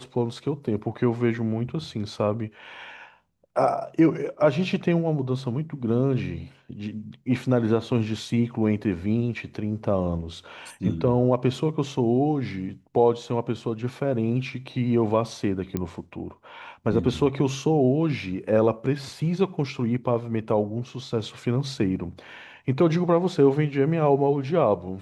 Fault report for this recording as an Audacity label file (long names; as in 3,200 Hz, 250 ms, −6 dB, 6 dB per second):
15.770000	15.770000	click −14 dBFS